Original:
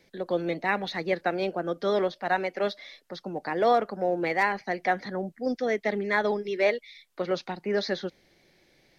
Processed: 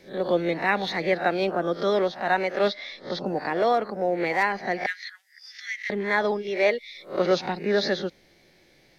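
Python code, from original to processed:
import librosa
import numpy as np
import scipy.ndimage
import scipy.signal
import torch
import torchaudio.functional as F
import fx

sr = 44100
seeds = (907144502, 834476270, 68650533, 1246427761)

y = fx.spec_swells(x, sr, rise_s=0.31)
y = fx.lowpass(y, sr, hz=5700.0, slope=12, at=(2.68, 3.26))
y = fx.rider(y, sr, range_db=5, speed_s=0.5)
y = fx.steep_highpass(y, sr, hz=1800.0, slope=36, at=(4.86, 5.9))
y = y * librosa.db_to_amplitude(2.5)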